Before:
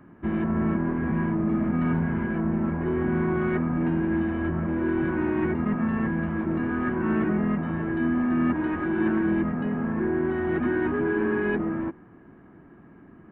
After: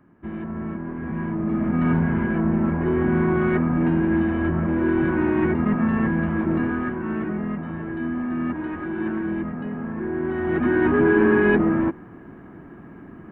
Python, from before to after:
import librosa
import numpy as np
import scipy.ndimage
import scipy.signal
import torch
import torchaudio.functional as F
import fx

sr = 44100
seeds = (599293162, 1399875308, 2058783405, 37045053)

y = fx.gain(x, sr, db=fx.line((0.84, -5.5), (1.9, 4.5), (6.61, 4.5), (7.02, -2.5), (10.02, -2.5), (11.0, 8.0)))